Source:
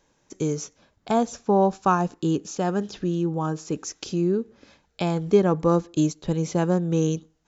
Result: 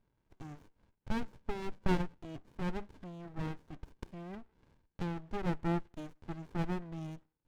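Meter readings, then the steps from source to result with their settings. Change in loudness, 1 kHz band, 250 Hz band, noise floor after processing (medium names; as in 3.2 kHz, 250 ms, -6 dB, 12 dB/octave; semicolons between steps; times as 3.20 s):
-15.5 dB, -17.0 dB, -15.5 dB, -81 dBFS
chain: two resonant band-passes 1.2 kHz, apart 0.74 oct; sliding maximum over 65 samples; trim +3.5 dB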